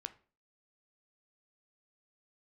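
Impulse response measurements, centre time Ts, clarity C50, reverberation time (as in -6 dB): 4 ms, 16.5 dB, 0.40 s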